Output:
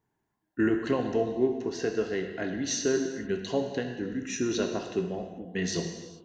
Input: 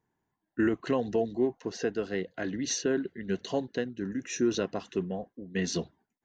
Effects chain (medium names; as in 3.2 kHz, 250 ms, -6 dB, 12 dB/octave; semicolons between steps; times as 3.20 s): gated-style reverb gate 470 ms falling, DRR 3.5 dB